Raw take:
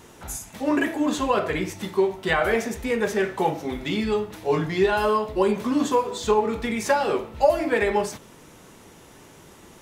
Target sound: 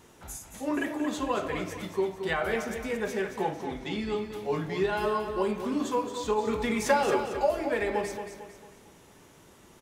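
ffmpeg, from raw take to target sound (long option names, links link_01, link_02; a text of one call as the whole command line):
ffmpeg -i in.wav -filter_complex "[0:a]asettb=1/sr,asplit=3[link_01][link_02][link_03];[link_01]atrim=end=3.424[link_04];[link_02]atrim=start=3.42:end=4.16,asetpts=PTS-STARTPTS,afade=type=in:duration=0.004:curve=qsin,afade=type=out:start_time=0.736:duration=0.004:curve=qsin,lowpass=9600[link_05];[link_03]atrim=start=4.156[link_06];[link_04][link_05]acrossfade=duration=0.004:curve1=hsin:curve2=qsin[link_07];[link_07][link_06]acrossfade=duration=0.004:curve1=qsin:curve2=hsin,asettb=1/sr,asplit=3[link_08][link_09][link_10];[link_08]atrim=end=6.474[link_11];[link_09]atrim=start=6.47:end=7.32,asetpts=PTS-STARTPTS,afade=type=in:duration=0.004:curve=qsin,afade=type=out:start_time=0.846:duration=0.004:curve=qsin,acontrast=27[link_12];[link_10]atrim=start=7.316[link_13];[link_11][link_12]acrossfade=duration=0.004:curve1=hsin:curve2=qsin[link_14];[link_14][link_13]acrossfade=duration=0.004:curve1=qsin:curve2=hsin,aecho=1:1:225|450|675|900|1125:0.376|0.154|0.0632|0.0259|0.0106,volume=-7.5dB" out.wav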